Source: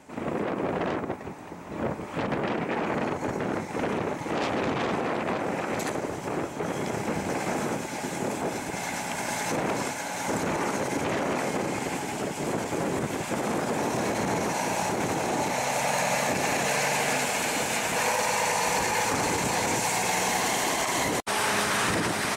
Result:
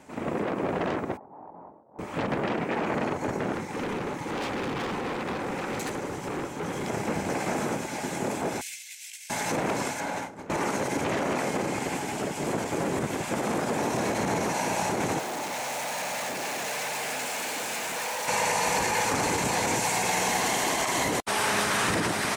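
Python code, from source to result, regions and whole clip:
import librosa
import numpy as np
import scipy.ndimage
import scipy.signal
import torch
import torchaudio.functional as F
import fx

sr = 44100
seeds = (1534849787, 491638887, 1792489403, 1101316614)

y = fx.chain(x, sr, fx.low_shelf(hz=160.0, db=-11.0),
    fx.over_compress(threshold_db=-44.0, ratio=-1.0),
    fx.ladder_lowpass(hz=1000.0, resonance_pct=50), at=(1.17, 1.99))
y = fx.chain(y, sr, fx.overload_stage(gain_db=27.5),
    fx.notch(hz=650.0, q=7.1), at=(3.53, 6.88))
y = fx.chain(y, sr, fx.cheby2_highpass(hz=1200.0, order=4, stop_db=40),
    fx.high_shelf(hz=11000.0, db=5.0),
    fx.over_compress(threshold_db=-41.0, ratio=-0.5), at=(8.61, 9.3))
y = fx.chain(y, sr, fx.high_shelf(hz=3000.0, db=-11.0),
    fx.over_compress(threshold_db=-35.0, ratio=-0.5),
    fx.doubler(ms=31.0, db=-9.0), at=(10.0, 10.5))
y = fx.chain(y, sr, fx.clip_hard(threshold_db=-29.5),
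    fx.quant_dither(seeds[0], bits=8, dither='triangular'),
    fx.highpass(hz=300.0, slope=6), at=(15.19, 18.28))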